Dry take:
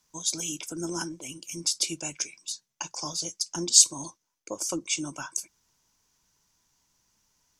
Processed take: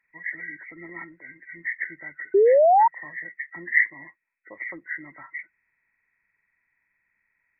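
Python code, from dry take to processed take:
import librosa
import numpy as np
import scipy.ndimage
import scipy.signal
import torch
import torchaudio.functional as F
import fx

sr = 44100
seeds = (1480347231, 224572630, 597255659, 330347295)

y = fx.freq_compress(x, sr, knee_hz=1300.0, ratio=4.0)
y = fx.low_shelf(y, sr, hz=350.0, db=-5.0)
y = fx.spec_paint(y, sr, seeds[0], shape='rise', start_s=2.34, length_s=0.54, low_hz=380.0, high_hz=960.0, level_db=-8.0)
y = F.gain(torch.from_numpy(y), -7.5).numpy()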